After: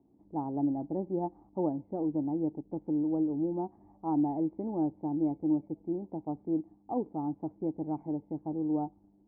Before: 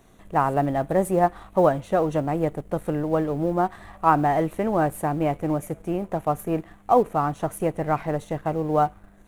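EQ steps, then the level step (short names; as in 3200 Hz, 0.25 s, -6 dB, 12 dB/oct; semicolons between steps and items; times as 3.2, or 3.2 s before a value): vocal tract filter u; HPF 62 Hz; air absorption 210 m; 0.0 dB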